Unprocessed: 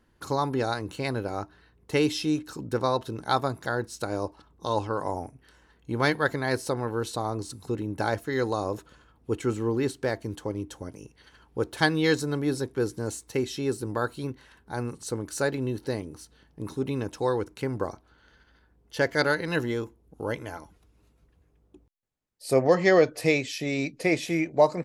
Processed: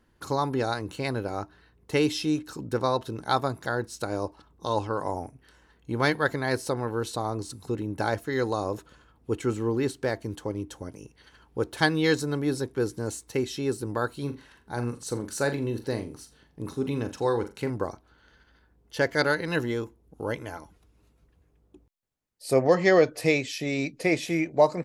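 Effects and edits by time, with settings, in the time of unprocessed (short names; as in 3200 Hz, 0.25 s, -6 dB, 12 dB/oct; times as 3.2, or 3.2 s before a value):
14.17–17.7 flutter echo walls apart 7.2 m, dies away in 0.26 s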